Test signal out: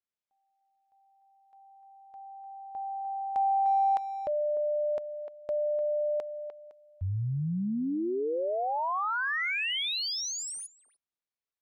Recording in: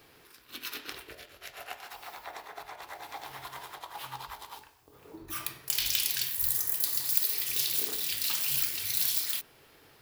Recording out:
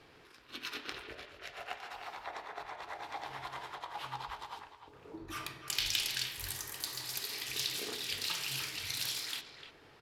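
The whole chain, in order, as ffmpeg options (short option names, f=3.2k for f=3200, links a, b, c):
-filter_complex "[0:a]adynamicsmooth=sensitivity=1.5:basefreq=6k,asplit=2[a][b];[b]adelay=300,highpass=300,lowpass=3.4k,asoftclip=type=hard:threshold=-24dB,volume=-9dB[c];[a][c]amix=inputs=2:normalize=0"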